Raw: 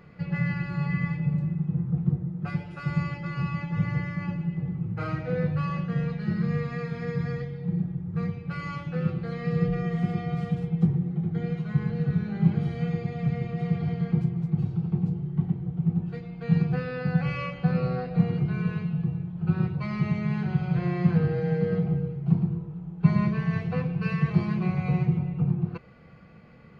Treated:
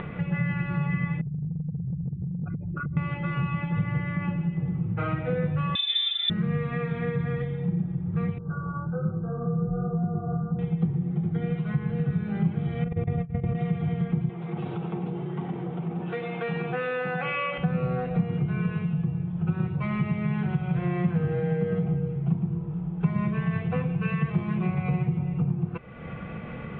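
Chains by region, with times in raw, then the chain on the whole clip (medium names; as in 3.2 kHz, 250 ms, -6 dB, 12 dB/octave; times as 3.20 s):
1.21–2.97 s: resonances exaggerated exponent 3 + compression, threshold -34 dBFS
5.75–6.30 s: distance through air 310 m + frequency inversion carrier 3.7 kHz
8.38–10.59 s: chorus 1.2 Hz, delay 18 ms, depth 6.6 ms + brick-wall FIR low-pass 1.6 kHz + comb of notches 280 Hz
12.84–13.55 s: low-pass 1.3 kHz 6 dB/octave + peaking EQ 68 Hz +11 dB 1.9 oct + compressor with a negative ratio -28 dBFS, ratio -0.5
14.29–17.58 s: high-pass 400 Hz + level flattener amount 50%
whole clip: upward compressor, threshold -31 dBFS; Chebyshev low-pass 3.6 kHz, order 6; compression 2.5:1, threshold -31 dBFS; trim +6 dB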